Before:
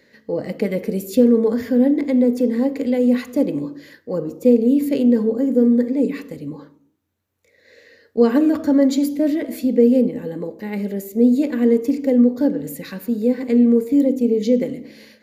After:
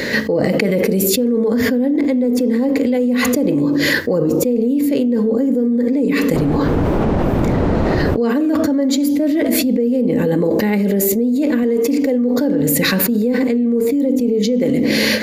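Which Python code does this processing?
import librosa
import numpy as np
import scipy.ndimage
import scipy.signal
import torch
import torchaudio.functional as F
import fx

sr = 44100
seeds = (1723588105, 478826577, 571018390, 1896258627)

y = fx.dmg_wind(x, sr, seeds[0], corner_hz=380.0, level_db=-32.0, at=(6.33, 8.22), fade=0.02)
y = fx.low_shelf(y, sr, hz=210.0, db=-9.0, at=(11.63, 12.54))
y = fx.env_flatten(y, sr, amount_pct=100)
y = y * librosa.db_to_amplitude(-5.5)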